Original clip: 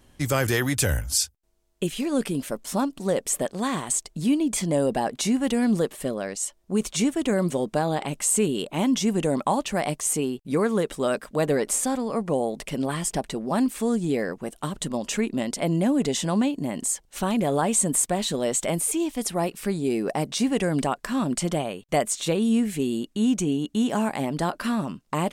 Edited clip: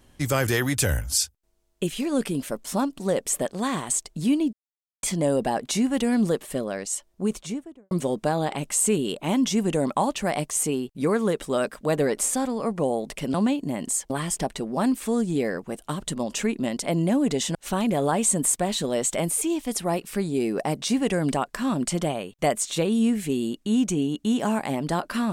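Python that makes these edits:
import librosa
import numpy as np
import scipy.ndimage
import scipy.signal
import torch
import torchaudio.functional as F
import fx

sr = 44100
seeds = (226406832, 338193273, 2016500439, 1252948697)

y = fx.studio_fade_out(x, sr, start_s=6.57, length_s=0.84)
y = fx.edit(y, sr, fx.insert_silence(at_s=4.53, length_s=0.5),
    fx.move(start_s=16.29, length_s=0.76, to_s=12.84), tone=tone)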